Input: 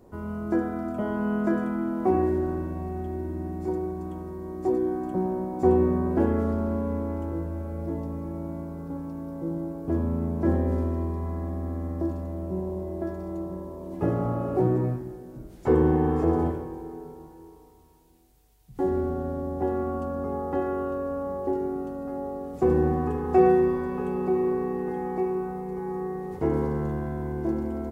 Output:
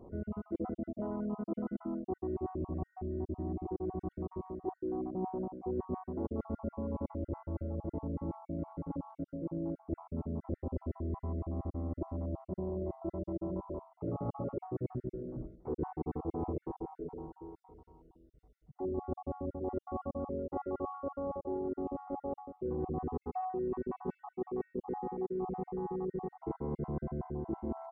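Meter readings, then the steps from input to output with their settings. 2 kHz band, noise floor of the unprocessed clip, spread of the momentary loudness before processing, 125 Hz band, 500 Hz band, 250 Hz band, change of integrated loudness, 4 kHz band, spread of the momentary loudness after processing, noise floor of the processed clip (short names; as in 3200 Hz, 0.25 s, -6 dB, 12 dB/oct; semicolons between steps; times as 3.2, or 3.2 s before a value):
under -20 dB, -48 dBFS, 12 LU, -10.5 dB, -12.0 dB, -11.0 dB, -11.5 dB, n/a, 4 LU, -79 dBFS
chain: random spectral dropouts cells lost 44%; reverse; compressor 10:1, threshold -34 dBFS, peak gain reduction 18.5 dB; reverse; polynomial smoothing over 65 samples; gain +1 dB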